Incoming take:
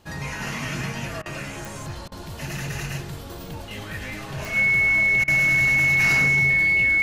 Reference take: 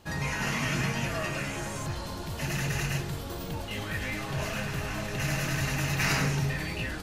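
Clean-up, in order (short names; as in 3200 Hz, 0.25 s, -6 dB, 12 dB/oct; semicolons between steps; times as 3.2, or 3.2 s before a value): de-click; notch 2200 Hz, Q 30; interpolate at 1.22/2.08/5.24, 37 ms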